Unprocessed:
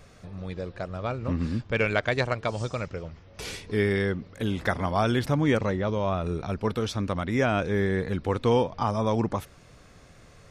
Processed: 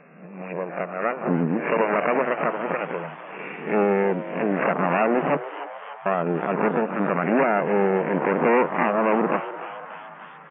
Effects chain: reverse spectral sustain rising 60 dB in 0.56 s; low-pass that closes with the level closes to 1.1 kHz, closed at -21.5 dBFS; Chebyshev shaper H 3 -15 dB, 5 -15 dB, 6 -7 dB, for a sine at -10.5 dBFS; 5.36–6.06 s: inverted gate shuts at -15 dBFS, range -41 dB; FFT band-pass 140–2800 Hz; frequency-shifting echo 292 ms, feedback 63%, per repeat +140 Hz, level -14 dB

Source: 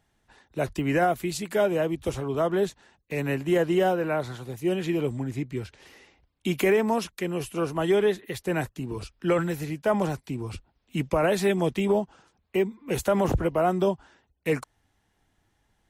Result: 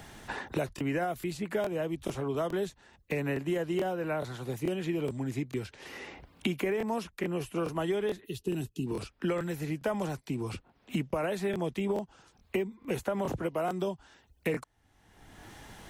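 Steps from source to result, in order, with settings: time-frequency box 8.26–8.86 s, 450–2500 Hz -18 dB; crackling interface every 0.43 s, samples 1024, repeat, from 0.76 s; three bands compressed up and down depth 100%; trim -7.5 dB

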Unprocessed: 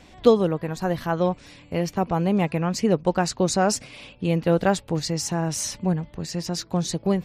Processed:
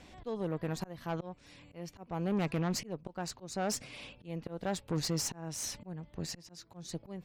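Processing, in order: slow attack 516 ms; valve stage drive 24 dB, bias 0.5; trim -3 dB

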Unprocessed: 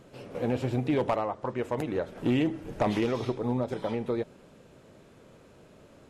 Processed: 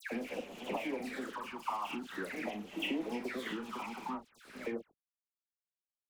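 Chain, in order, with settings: slices played last to first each 147 ms, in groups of 4; high-order bell 1.5 kHz +9.5 dB 2.5 oct; doubling 39 ms -9 dB; on a send: delay 457 ms -22.5 dB; on the sum: gate with hold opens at -37 dBFS; steep high-pass 180 Hz 96 dB/octave; compression 5:1, threshold -39 dBFS, peak gain reduction 20.5 dB; phase shifter stages 8, 0.45 Hz, lowest notch 510–1500 Hz; crossover distortion -56 dBFS; treble shelf 7.8 kHz +7.5 dB; phase dispersion lows, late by 115 ms, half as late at 1.8 kHz; trim +6.5 dB

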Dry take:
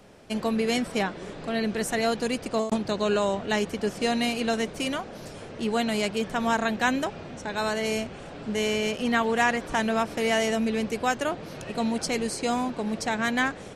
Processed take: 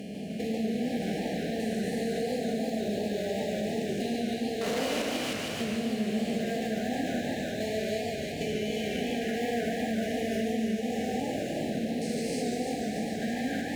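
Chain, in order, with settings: spectrogram pixelated in time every 400 ms; in parallel at -8 dB: sample-and-hold 15×; on the sum: one-sided clip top -26.5 dBFS; FFT band-reject 800–1600 Hz; 4.61–5.02 s: overdrive pedal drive 38 dB, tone 6 kHz, clips at -19 dBFS; high-pass 69 Hz; two-band feedback delay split 900 Hz, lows 85 ms, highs 312 ms, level -5 dB; on a send at -13 dB: reverberation RT60 0.35 s, pre-delay 3 ms; on the sum: compression 5:1, threshold -28 dBFS, peak gain reduction 7.5 dB; modulated delay 145 ms, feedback 59%, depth 177 cents, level -4 dB; trim -1.5 dB

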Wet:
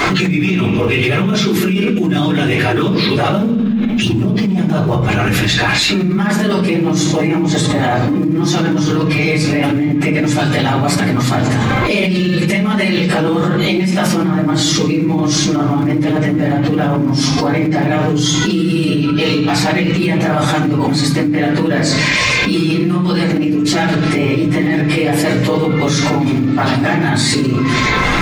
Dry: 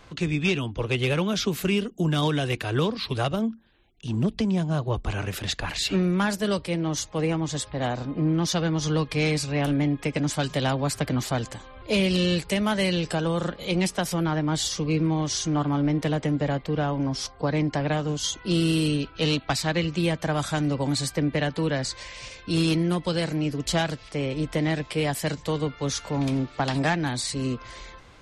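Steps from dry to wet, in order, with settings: phase randomisation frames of 50 ms; in parallel at -7.5 dB: short-mantissa float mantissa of 2-bit; on the sum: reverberation RT60 0.65 s, pre-delay 3 ms, DRR -2 dB; level flattener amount 100%; trim -9 dB

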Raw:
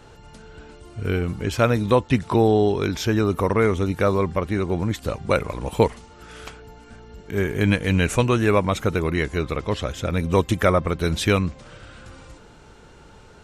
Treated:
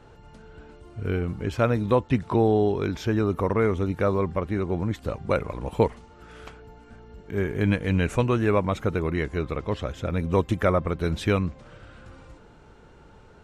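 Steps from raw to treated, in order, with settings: treble shelf 3.1 kHz -10.5 dB; trim -3 dB

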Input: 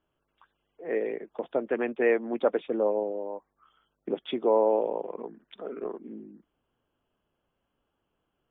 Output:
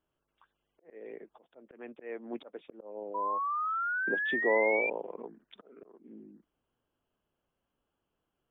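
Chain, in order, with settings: painted sound rise, 3.14–4.90 s, 970–2400 Hz -27 dBFS; slow attack 452 ms; trim -5 dB

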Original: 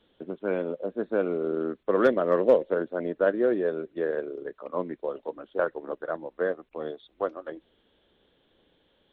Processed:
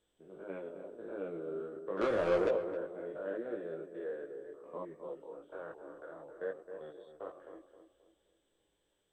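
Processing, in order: spectrogram pixelated in time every 100 ms; peaking EQ 240 Hz -9.5 dB 0.27 oct; 2.01–2.49 s: waveshaping leveller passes 3; chorus voices 4, 0.77 Hz, delay 19 ms, depth 2.1 ms; tape echo 263 ms, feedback 41%, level -7.5 dB, low-pass 1.2 kHz; trim -9 dB; MP2 192 kbps 32 kHz

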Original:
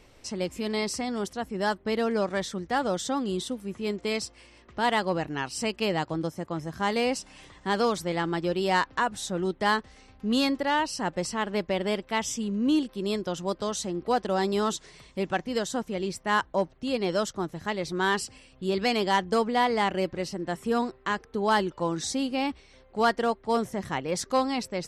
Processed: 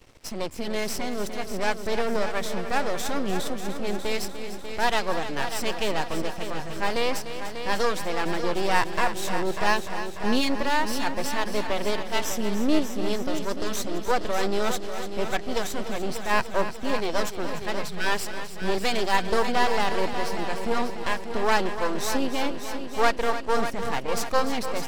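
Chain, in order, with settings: half-wave rectifier; spectral selection erased 17.82–18.06 s, 220–1200 Hz; multi-head delay 296 ms, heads first and second, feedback 58%, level -11.5 dB; trim +5.5 dB

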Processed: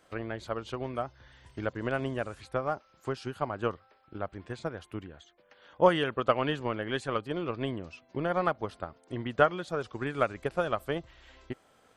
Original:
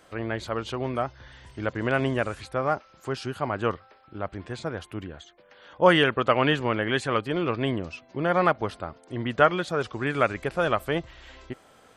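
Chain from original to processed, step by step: dynamic bell 2.1 kHz, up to -4 dB, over -38 dBFS, Q 1.3; transient shaper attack +7 dB, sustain 0 dB; trim -8 dB

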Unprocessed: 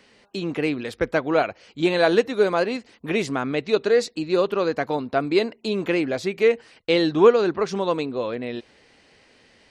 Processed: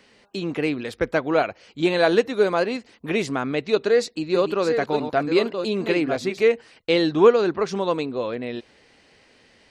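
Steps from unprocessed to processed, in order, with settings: 3.70–6.41 s: chunks repeated in reverse 649 ms, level -7 dB

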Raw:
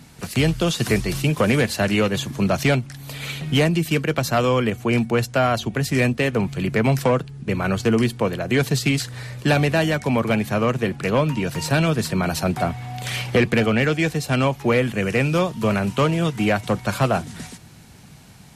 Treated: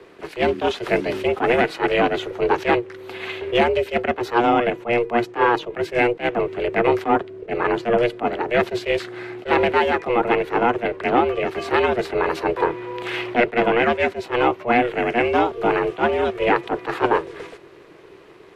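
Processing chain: ring modulator 240 Hz; three-band isolator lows -19 dB, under 220 Hz, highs -22 dB, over 3.1 kHz; attacks held to a fixed rise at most 280 dB/s; trim +6.5 dB

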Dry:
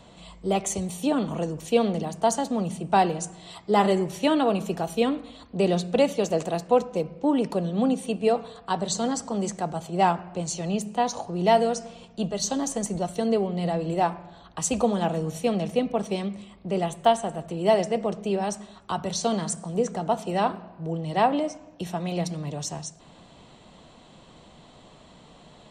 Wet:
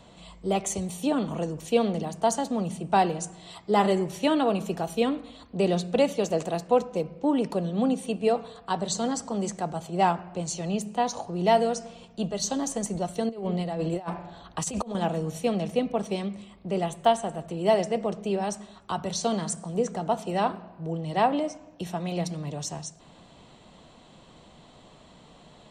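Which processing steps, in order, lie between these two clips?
13.29–14.95 s: compressor with a negative ratio -28 dBFS, ratio -0.5; trim -1.5 dB

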